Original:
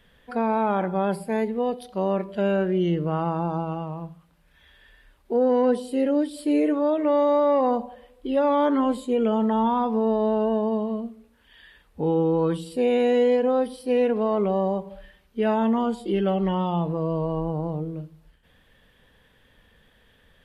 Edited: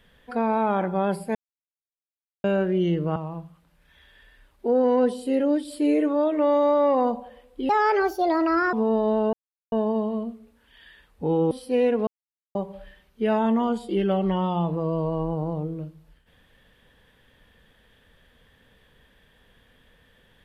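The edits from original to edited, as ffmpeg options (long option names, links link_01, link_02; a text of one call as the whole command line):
ffmpeg -i in.wav -filter_complex "[0:a]asplit=10[link_01][link_02][link_03][link_04][link_05][link_06][link_07][link_08][link_09][link_10];[link_01]atrim=end=1.35,asetpts=PTS-STARTPTS,afade=type=out:start_time=1.346:duration=0.004:curve=hsin[link_11];[link_02]atrim=start=1.35:end=2.44,asetpts=PTS-STARTPTS,volume=0[link_12];[link_03]atrim=start=2.44:end=3.162,asetpts=PTS-STARTPTS,afade=type=in:duration=0.004:curve=hsin[link_13];[link_04]atrim=start=3.818:end=8.354[link_14];[link_05]atrim=start=8.35:end=9.89,asetpts=PTS-STARTPTS,asetrate=65268,aresample=44100[link_15];[link_06]atrim=start=9.886:end=10.49,asetpts=PTS-STARTPTS,afade=type=out:start_time=0.6:duration=0.004:curve=hsin,apad=pad_dur=0.39[link_16];[link_07]atrim=start=10.49:end=12.282,asetpts=PTS-STARTPTS,afade=type=in:duration=0.004:curve=hsin[link_17];[link_08]atrim=start=13.678:end=14.24,asetpts=PTS-STARTPTS,afade=type=out:start_time=0.558:duration=0.004:curve=hsin[link_18];[link_09]atrim=start=14.24:end=14.72,asetpts=PTS-STARTPTS,volume=0[link_19];[link_10]atrim=start=14.72,asetpts=PTS-STARTPTS,afade=type=in:duration=0.004:curve=hsin[link_20];[link_11][link_12][link_13]concat=n=3:v=0:a=1[link_21];[link_21][link_14]acrossfade=duration=0.004:curve1=hsin:curve2=hsin[link_22];[link_22][link_15]acrossfade=duration=0.004:curve1=hsin:curve2=hsin[link_23];[link_16][link_17]concat=n=2:v=0:a=1[link_24];[link_23][link_24]acrossfade=duration=0.004:curve1=hsin:curve2=hsin[link_25];[link_18][link_19][link_20]concat=n=3:v=0:a=1[link_26];[link_25][link_26]acrossfade=duration=0.004:curve1=hsin:curve2=hsin" out.wav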